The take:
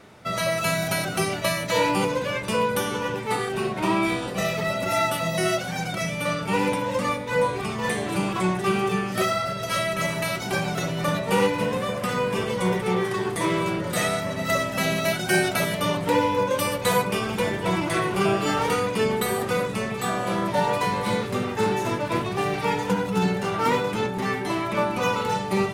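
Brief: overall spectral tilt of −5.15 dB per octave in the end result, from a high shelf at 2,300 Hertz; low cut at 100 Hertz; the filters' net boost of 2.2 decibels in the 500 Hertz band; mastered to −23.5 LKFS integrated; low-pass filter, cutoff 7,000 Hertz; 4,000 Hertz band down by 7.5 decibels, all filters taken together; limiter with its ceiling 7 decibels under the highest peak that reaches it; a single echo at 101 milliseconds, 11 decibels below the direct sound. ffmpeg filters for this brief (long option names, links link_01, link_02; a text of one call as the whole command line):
ffmpeg -i in.wav -af "highpass=100,lowpass=7000,equalizer=frequency=500:width_type=o:gain=3,highshelf=frequency=2300:gain=-4.5,equalizer=frequency=4000:width_type=o:gain=-5.5,alimiter=limit=-15dB:level=0:latency=1,aecho=1:1:101:0.282,volume=1.5dB" out.wav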